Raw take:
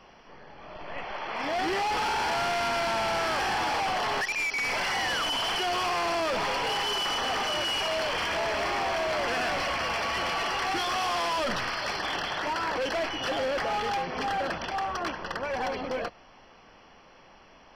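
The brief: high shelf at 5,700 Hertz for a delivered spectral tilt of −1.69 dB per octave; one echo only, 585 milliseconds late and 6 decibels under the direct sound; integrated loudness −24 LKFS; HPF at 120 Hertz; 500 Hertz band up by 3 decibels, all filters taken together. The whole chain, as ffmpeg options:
ffmpeg -i in.wav -af "highpass=120,equalizer=frequency=500:width_type=o:gain=4,highshelf=frequency=5700:gain=6,aecho=1:1:585:0.501,volume=1.5dB" out.wav

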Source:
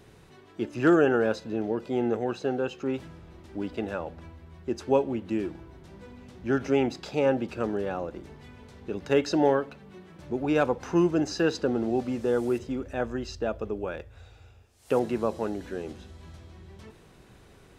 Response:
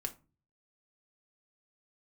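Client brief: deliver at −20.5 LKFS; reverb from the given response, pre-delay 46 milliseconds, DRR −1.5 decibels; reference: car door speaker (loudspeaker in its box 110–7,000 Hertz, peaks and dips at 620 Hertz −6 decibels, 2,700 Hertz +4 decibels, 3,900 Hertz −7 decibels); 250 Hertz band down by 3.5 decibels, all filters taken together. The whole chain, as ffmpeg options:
-filter_complex "[0:a]equalizer=frequency=250:width_type=o:gain=-4.5,asplit=2[link_01][link_02];[1:a]atrim=start_sample=2205,adelay=46[link_03];[link_02][link_03]afir=irnorm=-1:irlink=0,volume=2dB[link_04];[link_01][link_04]amix=inputs=2:normalize=0,highpass=110,equalizer=frequency=620:width_type=q:width=4:gain=-6,equalizer=frequency=2700:width_type=q:width=4:gain=4,equalizer=frequency=3900:width_type=q:width=4:gain=-7,lowpass=frequency=7000:width=0.5412,lowpass=frequency=7000:width=1.3066,volume=6dB"

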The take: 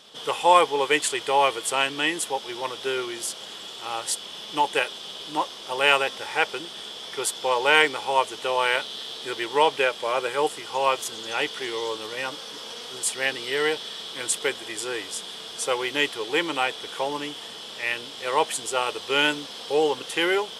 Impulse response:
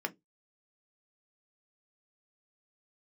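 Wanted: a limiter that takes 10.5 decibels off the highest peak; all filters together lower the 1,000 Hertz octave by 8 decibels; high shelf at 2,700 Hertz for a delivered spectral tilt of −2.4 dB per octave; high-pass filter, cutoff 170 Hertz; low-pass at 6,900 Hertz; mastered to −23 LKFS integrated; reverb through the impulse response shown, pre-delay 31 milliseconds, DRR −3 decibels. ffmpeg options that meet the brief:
-filter_complex "[0:a]highpass=170,lowpass=6900,equalizer=frequency=1000:width_type=o:gain=-9,highshelf=frequency=2700:gain=-6.5,alimiter=limit=-19dB:level=0:latency=1,asplit=2[link_01][link_02];[1:a]atrim=start_sample=2205,adelay=31[link_03];[link_02][link_03]afir=irnorm=-1:irlink=0,volume=-1dB[link_04];[link_01][link_04]amix=inputs=2:normalize=0,volume=4.5dB"

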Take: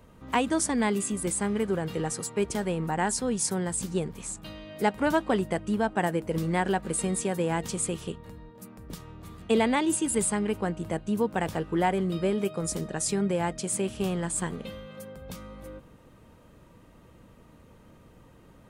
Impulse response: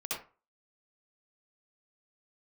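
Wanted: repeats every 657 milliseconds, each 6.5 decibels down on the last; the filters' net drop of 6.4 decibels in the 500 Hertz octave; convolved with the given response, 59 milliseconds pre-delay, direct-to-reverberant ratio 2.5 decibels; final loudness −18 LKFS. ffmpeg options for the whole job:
-filter_complex "[0:a]equalizer=frequency=500:width_type=o:gain=-8.5,aecho=1:1:657|1314|1971|2628|3285|3942:0.473|0.222|0.105|0.0491|0.0231|0.0109,asplit=2[link_01][link_02];[1:a]atrim=start_sample=2205,adelay=59[link_03];[link_02][link_03]afir=irnorm=-1:irlink=0,volume=-6dB[link_04];[link_01][link_04]amix=inputs=2:normalize=0,volume=10.5dB"

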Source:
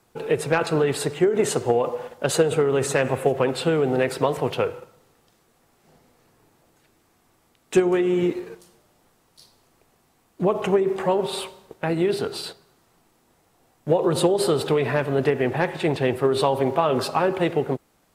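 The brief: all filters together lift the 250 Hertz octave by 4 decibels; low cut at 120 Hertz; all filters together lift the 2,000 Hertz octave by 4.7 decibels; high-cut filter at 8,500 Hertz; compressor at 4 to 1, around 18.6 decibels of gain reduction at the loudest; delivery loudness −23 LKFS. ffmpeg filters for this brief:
ffmpeg -i in.wav -af "highpass=120,lowpass=8500,equalizer=frequency=250:width_type=o:gain=6.5,equalizer=frequency=2000:width_type=o:gain=6,acompressor=threshold=-34dB:ratio=4,volume=12.5dB" out.wav

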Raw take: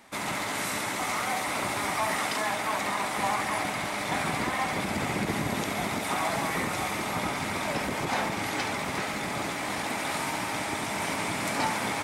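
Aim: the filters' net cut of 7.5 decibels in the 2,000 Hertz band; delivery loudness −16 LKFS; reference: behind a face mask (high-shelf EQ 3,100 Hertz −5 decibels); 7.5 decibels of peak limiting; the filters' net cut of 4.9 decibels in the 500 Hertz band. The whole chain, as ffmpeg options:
ffmpeg -i in.wav -af "equalizer=frequency=500:width_type=o:gain=-6,equalizer=frequency=2000:width_type=o:gain=-7,alimiter=level_in=1dB:limit=-24dB:level=0:latency=1,volume=-1dB,highshelf=frequency=3100:gain=-5,volume=19.5dB" out.wav

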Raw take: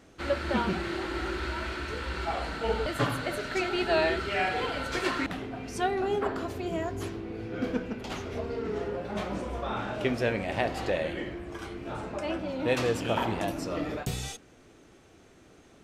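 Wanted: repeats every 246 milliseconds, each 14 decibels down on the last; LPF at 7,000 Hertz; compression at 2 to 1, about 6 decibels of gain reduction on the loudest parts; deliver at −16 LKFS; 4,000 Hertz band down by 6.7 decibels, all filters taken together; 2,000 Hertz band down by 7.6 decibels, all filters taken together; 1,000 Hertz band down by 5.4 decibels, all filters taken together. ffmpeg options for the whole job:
ffmpeg -i in.wav -af "lowpass=7000,equalizer=frequency=1000:width_type=o:gain=-6,equalizer=frequency=2000:width_type=o:gain=-6.5,equalizer=frequency=4000:width_type=o:gain=-5.5,acompressor=threshold=-35dB:ratio=2,aecho=1:1:246|492:0.2|0.0399,volume=21dB" out.wav

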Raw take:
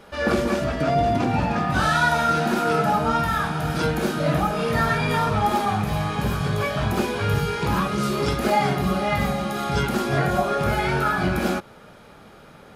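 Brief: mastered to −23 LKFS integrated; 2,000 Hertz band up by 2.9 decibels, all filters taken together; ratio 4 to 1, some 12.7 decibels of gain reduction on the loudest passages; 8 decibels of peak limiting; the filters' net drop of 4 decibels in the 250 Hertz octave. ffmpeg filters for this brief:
ffmpeg -i in.wav -af "equalizer=frequency=250:width_type=o:gain=-6,equalizer=frequency=2000:width_type=o:gain=4,acompressor=threshold=-31dB:ratio=4,volume=12dB,alimiter=limit=-14.5dB:level=0:latency=1" out.wav

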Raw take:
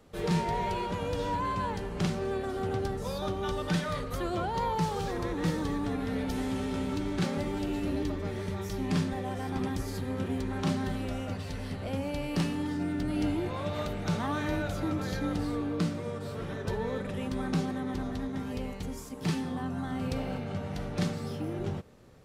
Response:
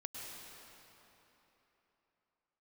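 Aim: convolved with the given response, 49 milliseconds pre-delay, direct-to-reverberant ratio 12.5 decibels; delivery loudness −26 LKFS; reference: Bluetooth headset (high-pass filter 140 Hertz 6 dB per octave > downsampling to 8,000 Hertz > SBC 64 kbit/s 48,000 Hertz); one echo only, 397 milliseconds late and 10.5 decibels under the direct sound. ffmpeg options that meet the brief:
-filter_complex "[0:a]aecho=1:1:397:0.299,asplit=2[link_01][link_02];[1:a]atrim=start_sample=2205,adelay=49[link_03];[link_02][link_03]afir=irnorm=-1:irlink=0,volume=-11dB[link_04];[link_01][link_04]amix=inputs=2:normalize=0,highpass=frequency=140:poles=1,aresample=8000,aresample=44100,volume=7.5dB" -ar 48000 -c:a sbc -b:a 64k

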